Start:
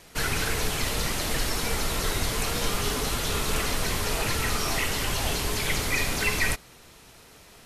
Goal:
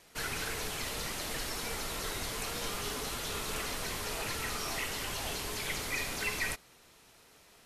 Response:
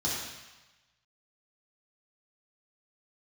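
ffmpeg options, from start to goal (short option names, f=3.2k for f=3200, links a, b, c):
-af "lowshelf=f=190:g=-7,volume=-8dB"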